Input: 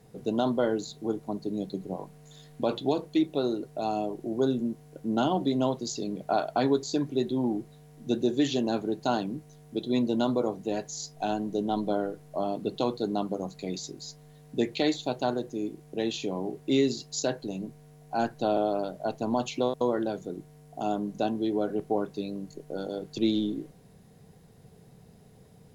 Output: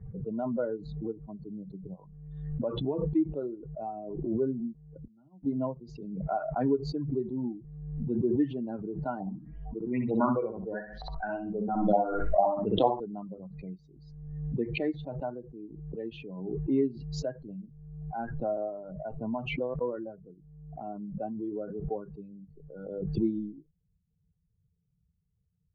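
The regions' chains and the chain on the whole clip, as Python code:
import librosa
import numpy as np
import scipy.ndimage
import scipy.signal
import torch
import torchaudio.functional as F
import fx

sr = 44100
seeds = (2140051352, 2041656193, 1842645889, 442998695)

y = fx.chain(x, sr, fx.low_shelf(hz=420.0, db=8.0),
    fx.gate_flip(shuts_db=-27.0, range_db=-41),
    fx.band_squash(depth_pct=40), at=(4.98, 5.45))
y = fx.chain(y, sr, fx.filter_lfo_lowpass(shape='saw_up', hz=2.2, low_hz=720.0, high_hz=4000.0, q=6.4),
    fx.echo_feedback(ms=63, feedback_pct=34, wet_db=-3.5), at=(9.2, 13.0))
y = fx.bin_expand(y, sr, power=2.0)
y = scipy.signal.sosfilt(scipy.signal.butter(4, 1500.0, 'lowpass', fs=sr, output='sos'), y)
y = fx.pre_swell(y, sr, db_per_s=41.0)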